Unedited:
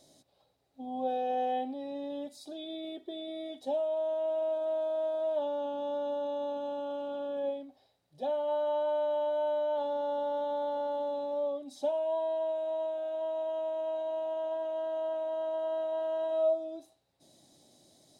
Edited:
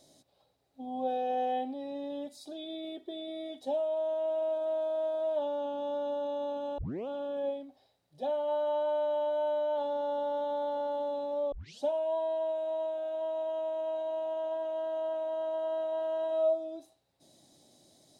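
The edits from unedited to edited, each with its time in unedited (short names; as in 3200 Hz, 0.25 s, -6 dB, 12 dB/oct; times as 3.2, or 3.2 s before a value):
6.78 tape start 0.30 s
11.52 tape start 0.30 s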